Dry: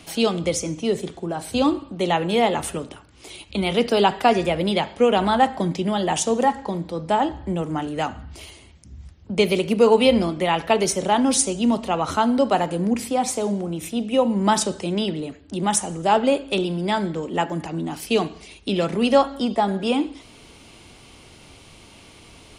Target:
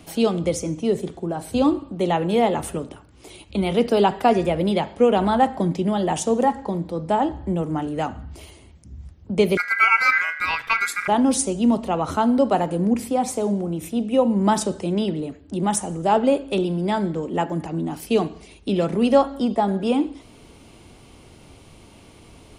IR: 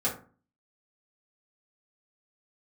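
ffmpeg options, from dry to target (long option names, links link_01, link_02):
-filter_complex "[0:a]equalizer=frequency=3800:width=0.31:gain=-8,asettb=1/sr,asplit=3[link_01][link_02][link_03];[link_01]atrim=end=9.574[link_04];[link_02]atrim=start=9.57:end=11.08,asetpts=PTS-STARTPTS,afade=type=in:duration=0.004:curve=qsin,afade=type=out:start_time=1.506:duration=0.004:curve=qsin,aeval=exprs='val(0)*sin(2*PI*1800*n/s)':channel_layout=same[link_05];[link_03]atrim=start=11.076[link_06];[link_04][link_05]acrossfade=duration=0.004:curve1=hsin:curve2=qsin[link_07];[link_07][link_06]acrossfade=duration=0.004:curve1=qsin:curve2=hsin,volume=2dB"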